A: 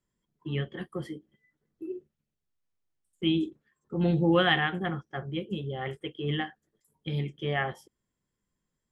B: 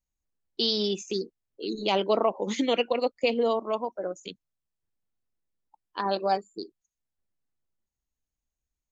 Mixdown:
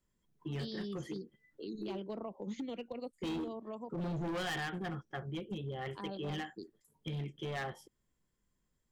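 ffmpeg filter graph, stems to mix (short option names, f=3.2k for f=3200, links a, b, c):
-filter_complex "[0:a]asoftclip=type=tanh:threshold=-20dB,volume=0dB[a];[1:a]lowshelf=f=360:g=10.5,acrossover=split=200[b][c];[c]acompressor=threshold=-47dB:ratio=1.5[d];[b][d]amix=inputs=2:normalize=0,volume=-7dB[e];[a][e]amix=inputs=2:normalize=0,asoftclip=type=hard:threshold=-27.5dB,acompressor=threshold=-42dB:ratio=2"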